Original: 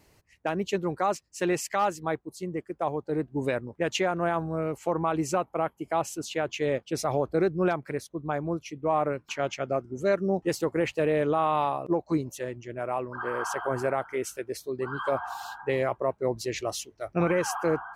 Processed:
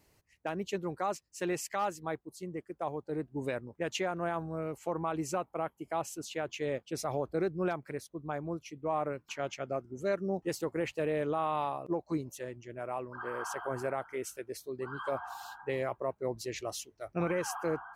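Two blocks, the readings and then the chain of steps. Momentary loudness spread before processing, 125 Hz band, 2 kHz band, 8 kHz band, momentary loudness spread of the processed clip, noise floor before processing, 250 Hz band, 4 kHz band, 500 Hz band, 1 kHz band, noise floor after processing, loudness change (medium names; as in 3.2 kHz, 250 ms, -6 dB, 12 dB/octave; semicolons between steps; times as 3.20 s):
8 LU, -7.0 dB, -7.0 dB, -5.5 dB, 8 LU, -66 dBFS, -7.0 dB, -6.5 dB, -7.0 dB, -7.0 dB, -72 dBFS, -7.0 dB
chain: treble shelf 8.6 kHz +4.5 dB; trim -7 dB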